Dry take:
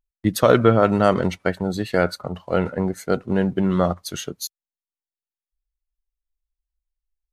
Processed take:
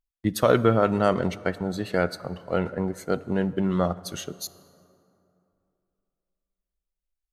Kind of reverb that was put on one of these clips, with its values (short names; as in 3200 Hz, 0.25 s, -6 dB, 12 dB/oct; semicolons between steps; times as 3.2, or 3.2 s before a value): plate-style reverb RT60 2.8 s, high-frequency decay 0.5×, DRR 17 dB; gain -4.5 dB